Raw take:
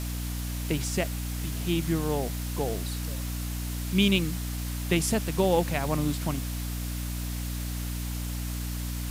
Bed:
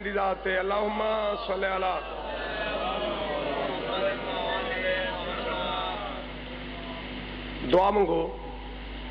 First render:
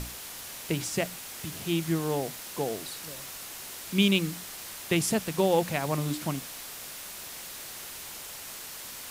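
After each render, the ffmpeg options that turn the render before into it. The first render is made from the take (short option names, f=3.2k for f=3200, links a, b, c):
-af "bandreject=f=60:t=h:w=6,bandreject=f=120:t=h:w=6,bandreject=f=180:t=h:w=6,bandreject=f=240:t=h:w=6,bandreject=f=300:t=h:w=6"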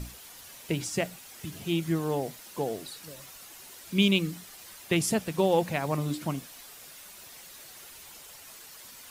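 -af "afftdn=nr=9:nf=-42"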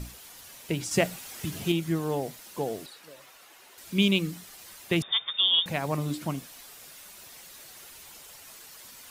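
-filter_complex "[0:a]asettb=1/sr,asplit=3[a][b][c];[a]atrim=end=0.914[d];[b]atrim=start=0.91:end=1.72,asetpts=PTS-STARTPTS,afade=t=in:d=0.004:c=qsin,afade=t=out:st=0.806:d=0.004:c=qsin,acontrast=34[e];[c]atrim=start=1.716[f];[d][e]acrossfade=d=0.004:c1=hsin:c2=qsin[g];[g][f]acrossfade=d=0.004:c1=qsin:c2=hsin,asettb=1/sr,asplit=3[h][i][j];[h]atrim=end=2.864[k];[i]atrim=start=2.86:end=3.78,asetpts=PTS-STARTPTS,afade=t=in:d=0.004:c=qsin,afade=t=out:st=0.916:d=0.004:c=qsin,bass=f=250:g=-14,treble=f=4k:g=-9[l];[j]atrim=start=3.776[m];[k][l]acrossfade=d=0.004:c1=hsin:c2=qsin[n];[n][m]acrossfade=d=0.004:c1=qsin:c2=hsin,asettb=1/sr,asplit=3[o][p][q];[o]atrim=end=5.024[r];[p]atrim=start=5.02:end=5.66,asetpts=PTS-STARTPTS,afade=t=in:d=0.004:c=qsin,afade=t=out:st=0.636:d=0.004:c=qsin,lowpass=f=3.2k:t=q:w=0.5098,lowpass=f=3.2k:t=q:w=0.6013,lowpass=f=3.2k:t=q:w=0.9,lowpass=f=3.2k:t=q:w=2.563,afreqshift=-3800[s];[q]atrim=start=5.656[t];[r][s]acrossfade=d=0.004:c1=hsin:c2=qsin[u];[u][t]acrossfade=d=0.004:c1=qsin:c2=hsin"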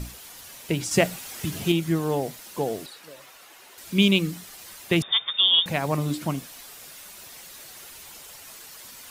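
-af "volume=4dB"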